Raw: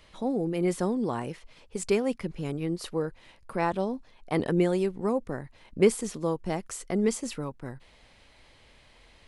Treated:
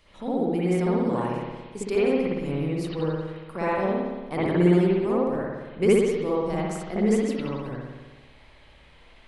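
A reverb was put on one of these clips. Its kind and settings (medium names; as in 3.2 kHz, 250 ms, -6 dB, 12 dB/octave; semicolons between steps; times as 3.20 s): spring tank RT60 1.3 s, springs 57 ms, chirp 35 ms, DRR -8 dB; trim -4.5 dB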